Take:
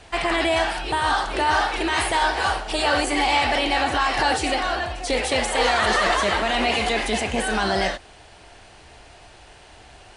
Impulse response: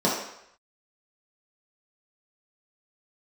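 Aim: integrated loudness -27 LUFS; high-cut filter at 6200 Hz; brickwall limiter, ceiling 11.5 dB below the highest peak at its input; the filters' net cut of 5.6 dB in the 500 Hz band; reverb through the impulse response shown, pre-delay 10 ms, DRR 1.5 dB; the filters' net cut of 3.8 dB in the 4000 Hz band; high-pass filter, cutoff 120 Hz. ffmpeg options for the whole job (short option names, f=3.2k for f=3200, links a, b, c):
-filter_complex "[0:a]highpass=120,lowpass=6.2k,equalizer=f=500:t=o:g=-7.5,equalizer=f=4k:t=o:g=-4.5,alimiter=limit=-22dB:level=0:latency=1,asplit=2[a][b];[1:a]atrim=start_sample=2205,adelay=10[c];[b][c]afir=irnorm=-1:irlink=0,volume=-17dB[d];[a][d]amix=inputs=2:normalize=0"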